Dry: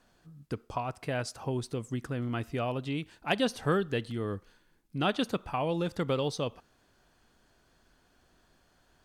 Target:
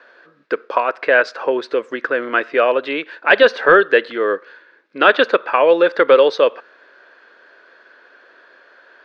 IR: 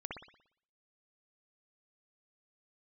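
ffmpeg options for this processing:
-af "highpass=f=400:w=0.5412,highpass=f=400:w=1.3066,equalizer=f=530:t=q:w=4:g=5,equalizer=f=770:t=q:w=4:g=-9,equalizer=f=1600:t=q:w=4:g=9,equalizer=f=3100:t=q:w=4:g=-6,lowpass=f=3600:w=0.5412,lowpass=f=3600:w=1.3066,apsyclip=11.2,volume=0.794"

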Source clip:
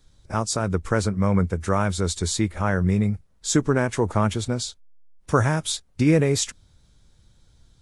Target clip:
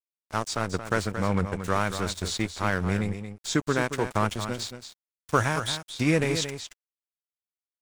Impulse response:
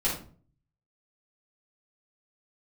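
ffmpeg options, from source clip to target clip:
-filter_complex "[0:a]tiltshelf=f=1100:g=-4.5,aeval=exprs='sgn(val(0))*max(abs(val(0))-0.0224,0)':c=same,acrossover=split=4500[s0][s1];[s1]acompressor=threshold=0.0141:ratio=4:attack=1:release=60[s2];[s0][s2]amix=inputs=2:normalize=0,aecho=1:1:226:0.335"

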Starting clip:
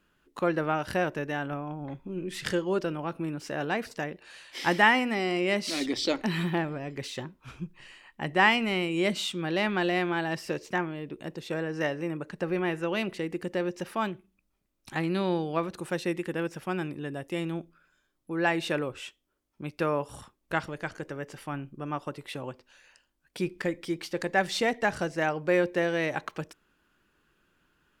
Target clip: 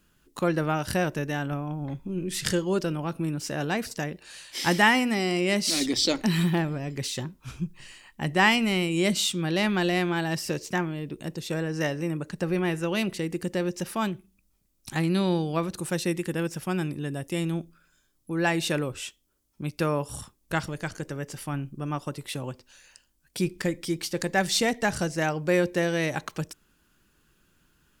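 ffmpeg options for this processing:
-af "bass=f=250:g=8,treble=f=4000:g=12"

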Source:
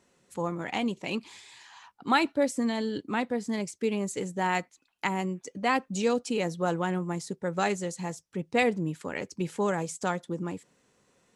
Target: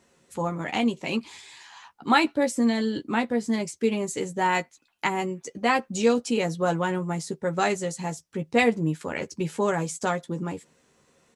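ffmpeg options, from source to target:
-filter_complex "[0:a]asplit=2[s0][s1];[s1]adelay=13,volume=0.501[s2];[s0][s2]amix=inputs=2:normalize=0,volume=1.41"

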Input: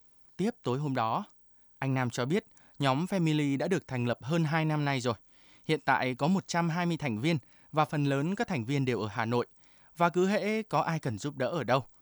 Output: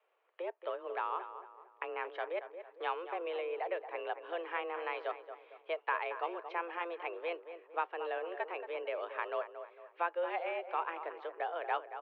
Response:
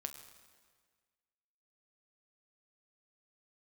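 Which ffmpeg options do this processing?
-filter_complex "[0:a]acompressor=threshold=0.00708:ratio=1.5,highpass=f=270:t=q:w=0.5412,highpass=f=270:t=q:w=1.307,lowpass=f=2800:t=q:w=0.5176,lowpass=f=2800:t=q:w=0.7071,lowpass=f=2800:t=q:w=1.932,afreqshift=170,asplit=2[s0][s1];[s1]adelay=227,lowpass=f=1700:p=1,volume=0.335,asplit=2[s2][s3];[s3]adelay=227,lowpass=f=1700:p=1,volume=0.44,asplit=2[s4][s5];[s5]adelay=227,lowpass=f=1700:p=1,volume=0.44,asplit=2[s6][s7];[s7]adelay=227,lowpass=f=1700:p=1,volume=0.44,asplit=2[s8][s9];[s9]adelay=227,lowpass=f=1700:p=1,volume=0.44[s10];[s0][s2][s4][s6][s8][s10]amix=inputs=6:normalize=0"

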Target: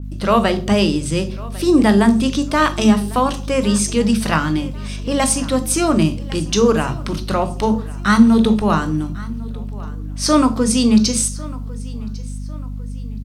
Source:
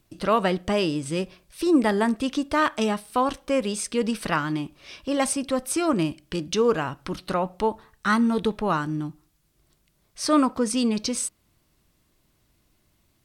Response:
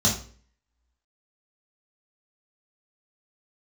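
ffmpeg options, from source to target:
-filter_complex "[0:a]asplit=2[s0][s1];[s1]tiltshelf=f=970:g=3.5[s2];[1:a]atrim=start_sample=2205,highshelf=f=5300:g=10,adelay=18[s3];[s2][s3]afir=irnorm=-1:irlink=0,volume=0.0668[s4];[s0][s4]amix=inputs=2:normalize=0,aeval=exprs='val(0)+0.0251*(sin(2*PI*50*n/s)+sin(2*PI*2*50*n/s)/2+sin(2*PI*3*50*n/s)/3+sin(2*PI*4*50*n/s)/4+sin(2*PI*5*50*n/s)/5)':c=same,aecho=1:1:1100|2200|3300:0.1|0.041|0.0168,adynamicequalizer=threshold=0.0112:dfrequency=2700:dqfactor=0.7:tfrequency=2700:tqfactor=0.7:attack=5:release=100:ratio=0.375:range=2:mode=boostabove:tftype=highshelf,volume=1.78"

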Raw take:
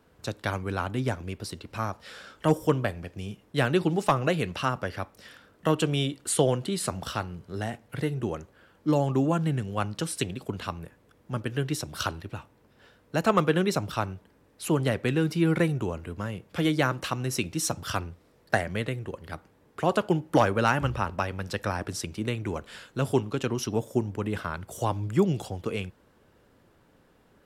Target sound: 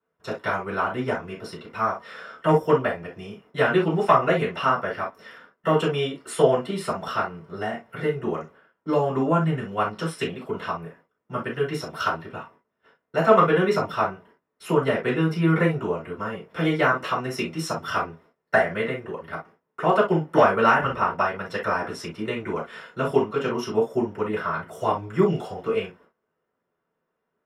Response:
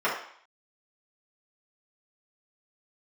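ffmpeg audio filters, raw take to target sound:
-filter_complex "[0:a]agate=range=0.0891:threshold=0.002:ratio=16:detection=peak[s0];[1:a]atrim=start_sample=2205,atrim=end_sample=3087[s1];[s0][s1]afir=irnorm=-1:irlink=0,volume=0.422"

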